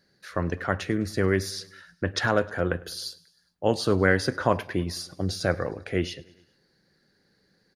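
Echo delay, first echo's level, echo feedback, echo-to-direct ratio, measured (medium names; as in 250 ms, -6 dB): 103 ms, -23.0 dB, 60%, -21.0 dB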